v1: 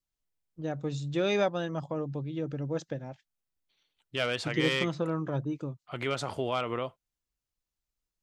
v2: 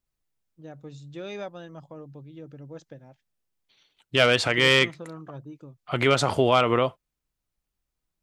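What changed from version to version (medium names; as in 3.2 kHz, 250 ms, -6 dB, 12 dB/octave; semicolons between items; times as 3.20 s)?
first voice -9.0 dB; second voice +11.0 dB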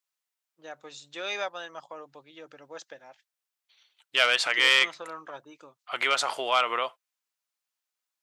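first voice +10.5 dB; master: add high-pass 920 Hz 12 dB/octave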